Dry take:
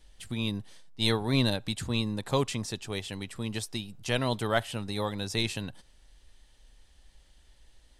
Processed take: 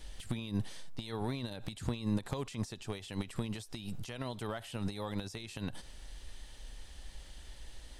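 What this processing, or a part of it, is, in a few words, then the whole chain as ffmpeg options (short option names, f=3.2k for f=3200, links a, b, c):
de-esser from a sidechain: -filter_complex "[0:a]asplit=2[a][b];[b]highpass=f=4.3k:p=1,apad=whole_len=352758[c];[a][c]sidechaincompress=threshold=-59dB:ratio=6:attack=1.5:release=54,volume=9.5dB"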